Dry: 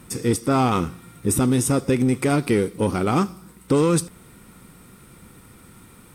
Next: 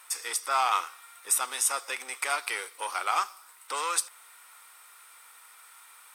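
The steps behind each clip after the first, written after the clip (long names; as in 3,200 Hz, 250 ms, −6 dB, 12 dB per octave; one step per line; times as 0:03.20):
high-pass filter 860 Hz 24 dB per octave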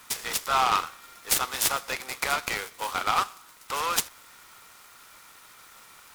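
short delay modulated by noise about 1,900 Hz, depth 0.038 ms
level +2.5 dB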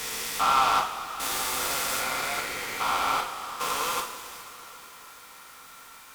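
spectrum averaged block by block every 400 ms
coupled-rooms reverb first 0.4 s, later 4.5 s, from −18 dB, DRR −2.5 dB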